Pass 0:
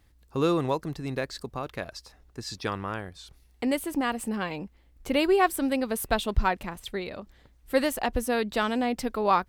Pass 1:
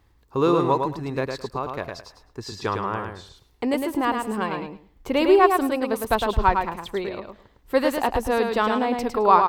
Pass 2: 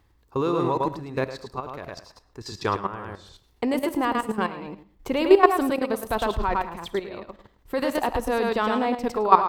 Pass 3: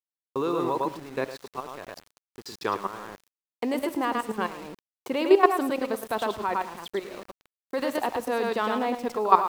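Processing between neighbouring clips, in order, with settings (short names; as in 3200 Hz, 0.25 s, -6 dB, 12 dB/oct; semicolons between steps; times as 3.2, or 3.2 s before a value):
fifteen-band EQ 100 Hz +4 dB, 400 Hz +6 dB, 1000 Hz +9 dB, 10000 Hz -6 dB; on a send: feedback echo 0.107 s, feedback 18%, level -5 dB
level quantiser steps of 13 dB; reverb RT60 0.50 s, pre-delay 10 ms, DRR 17 dB; gain +3 dB
HPF 200 Hz 12 dB/oct; sample gate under -39.5 dBFS; gain -2.5 dB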